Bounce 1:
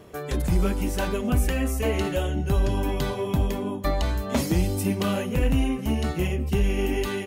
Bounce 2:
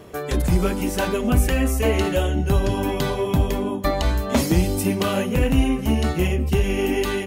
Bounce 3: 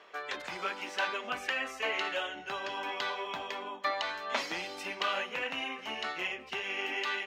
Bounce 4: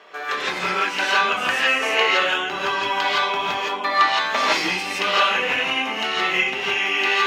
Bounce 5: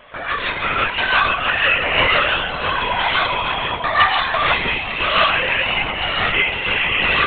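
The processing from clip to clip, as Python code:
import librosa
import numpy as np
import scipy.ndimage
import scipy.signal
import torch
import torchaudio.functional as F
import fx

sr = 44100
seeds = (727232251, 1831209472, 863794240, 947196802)

y1 = fx.hum_notches(x, sr, base_hz=50, count=4)
y1 = y1 * librosa.db_to_amplitude(5.0)
y2 = scipy.signal.sosfilt(scipy.signal.butter(2, 1200.0, 'highpass', fs=sr, output='sos'), y1)
y2 = fx.air_absorb(y2, sr, metres=200.0)
y3 = scipy.signal.sosfilt(scipy.signal.butter(2, 71.0, 'highpass', fs=sr, output='sos'), y2)
y3 = fx.rev_gated(y3, sr, seeds[0], gate_ms=190, shape='rising', drr_db=-7.0)
y3 = y3 * librosa.db_to_amplitude(7.0)
y4 = fx.low_shelf(y3, sr, hz=450.0, db=-4.5)
y4 = fx.lpc_vocoder(y4, sr, seeds[1], excitation='whisper', order=16)
y4 = y4 * librosa.db_to_amplitude(3.5)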